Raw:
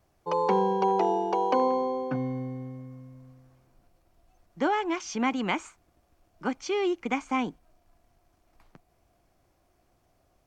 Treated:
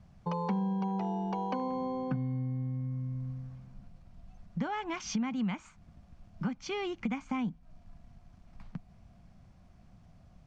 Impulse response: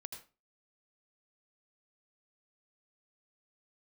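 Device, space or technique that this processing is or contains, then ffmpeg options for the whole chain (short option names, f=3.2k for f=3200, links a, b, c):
jukebox: -af "lowpass=5.9k,lowshelf=f=260:t=q:w=3:g=9.5,acompressor=threshold=-36dB:ratio=4,volume=3dB"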